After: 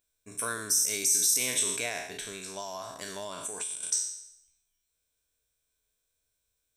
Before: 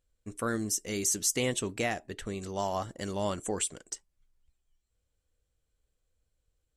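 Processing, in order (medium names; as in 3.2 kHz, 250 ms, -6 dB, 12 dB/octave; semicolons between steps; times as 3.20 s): spectral sustain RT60 0.76 s; rippled EQ curve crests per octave 1.6, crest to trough 8 dB; peak limiter -20 dBFS, peak gain reduction 7.5 dB; tilt EQ +3 dB/octave; 2.05–3.83 s: compression 4:1, threshold -32 dBFS, peak gain reduction 12 dB; trim -3 dB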